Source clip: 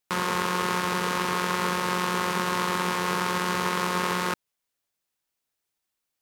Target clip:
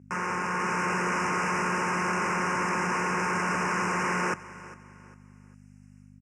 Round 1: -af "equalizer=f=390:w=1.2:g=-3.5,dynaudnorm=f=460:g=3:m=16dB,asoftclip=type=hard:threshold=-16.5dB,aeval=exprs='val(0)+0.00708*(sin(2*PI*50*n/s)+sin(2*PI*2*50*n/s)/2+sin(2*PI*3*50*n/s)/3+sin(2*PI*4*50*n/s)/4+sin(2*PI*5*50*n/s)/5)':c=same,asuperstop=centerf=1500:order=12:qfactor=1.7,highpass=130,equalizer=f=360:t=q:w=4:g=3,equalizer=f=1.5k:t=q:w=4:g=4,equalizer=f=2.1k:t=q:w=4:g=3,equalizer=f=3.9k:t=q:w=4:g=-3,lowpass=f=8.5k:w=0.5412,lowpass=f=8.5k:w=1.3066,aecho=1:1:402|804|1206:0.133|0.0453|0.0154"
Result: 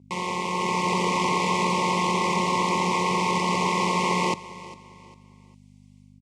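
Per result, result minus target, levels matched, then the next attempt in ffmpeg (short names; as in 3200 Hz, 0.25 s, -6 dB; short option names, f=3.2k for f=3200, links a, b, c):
4000 Hz band +8.0 dB; hard clip: distortion -5 dB
-af "equalizer=f=390:w=1.2:g=-3.5,dynaudnorm=f=460:g=3:m=16dB,asoftclip=type=hard:threshold=-16.5dB,aeval=exprs='val(0)+0.00708*(sin(2*PI*50*n/s)+sin(2*PI*2*50*n/s)/2+sin(2*PI*3*50*n/s)/3+sin(2*PI*4*50*n/s)/4+sin(2*PI*5*50*n/s)/5)':c=same,asuperstop=centerf=3800:order=12:qfactor=1.7,highpass=130,equalizer=f=360:t=q:w=4:g=3,equalizer=f=1.5k:t=q:w=4:g=4,equalizer=f=2.1k:t=q:w=4:g=3,equalizer=f=3.9k:t=q:w=4:g=-3,lowpass=f=8.5k:w=0.5412,lowpass=f=8.5k:w=1.3066,aecho=1:1:402|804|1206:0.133|0.0453|0.0154"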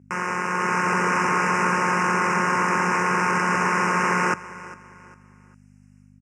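hard clip: distortion -5 dB
-af "equalizer=f=390:w=1.2:g=-3.5,dynaudnorm=f=460:g=3:m=16dB,asoftclip=type=hard:threshold=-26.5dB,aeval=exprs='val(0)+0.00708*(sin(2*PI*50*n/s)+sin(2*PI*2*50*n/s)/2+sin(2*PI*3*50*n/s)/3+sin(2*PI*4*50*n/s)/4+sin(2*PI*5*50*n/s)/5)':c=same,asuperstop=centerf=3800:order=12:qfactor=1.7,highpass=130,equalizer=f=360:t=q:w=4:g=3,equalizer=f=1.5k:t=q:w=4:g=4,equalizer=f=2.1k:t=q:w=4:g=3,equalizer=f=3.9k:t=q:w=4:g=-3,lowpass=f=8.5k:w=0.5412,lowpass=f=8.5k:w=1.3066,aecho=1:1:402|804|1206:0.133|0.0453|0.0154"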